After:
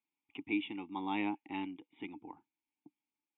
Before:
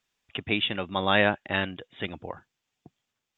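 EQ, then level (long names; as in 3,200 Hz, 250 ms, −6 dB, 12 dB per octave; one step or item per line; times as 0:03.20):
formant filter u
+1.0 dB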